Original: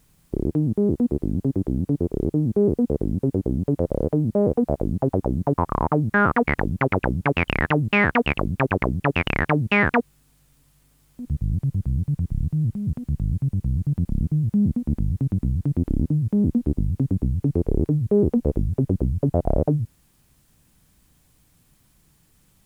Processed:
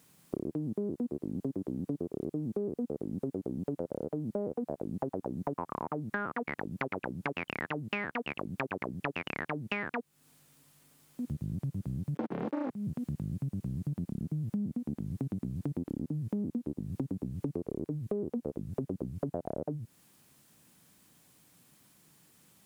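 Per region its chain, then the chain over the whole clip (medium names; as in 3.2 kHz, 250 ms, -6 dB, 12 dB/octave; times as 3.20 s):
12.15–12.70 s: ring modulator 140 Hz + waveshaping leveller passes 5 + three-band isolator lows -16 dB, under 190 Hz, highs -17 dB, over 3.4 kHz
whole clip: high-pass 180 Hz 12 dB/octave; compression 10:1, threshold -31 dBFS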